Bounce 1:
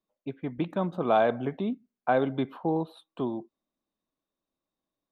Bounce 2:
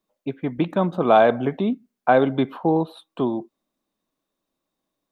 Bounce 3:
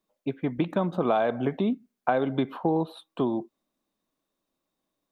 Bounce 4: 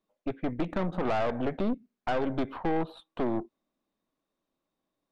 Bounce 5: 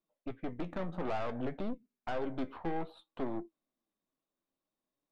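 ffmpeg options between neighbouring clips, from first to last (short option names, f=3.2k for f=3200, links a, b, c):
-af "equalizer=f=64:w=1.1:g=-5.5,volume=8dB"
-af "acompressor=threshold=-19dB:ratio=6,volume=-1.5dB"
-af "aeval=exprs='(tanh(25.1*val(0)+0.75)-tanh(0.75))/25.1':c=same,aemphasis=mode=reproduction:type=50kf,volume=3.5dB"
-af "flanger=delay=5.7:depth=7:regen=62:speed=0.58:shape=triangular,volume=-3.5dB"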